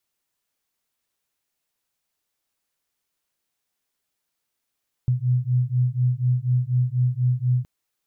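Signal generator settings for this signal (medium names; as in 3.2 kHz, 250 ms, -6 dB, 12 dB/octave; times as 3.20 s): beating tones 123 Hz, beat 4.1 Hz, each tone -21.5 dBFS 2.57 s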